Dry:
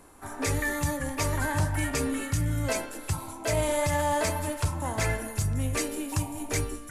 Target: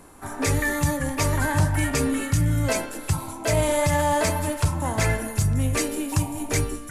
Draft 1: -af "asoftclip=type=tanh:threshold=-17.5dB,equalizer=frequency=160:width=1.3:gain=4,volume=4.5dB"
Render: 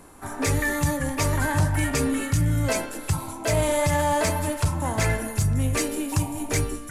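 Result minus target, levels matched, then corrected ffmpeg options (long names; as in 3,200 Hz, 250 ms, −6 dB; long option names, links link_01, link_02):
soft clipping: distortion +14 dB
-af "asoftclip=type=tanh:threshold=-9.5dB,equalizer=frequency=160:width=1.3:gain=4,volume=4.5dB"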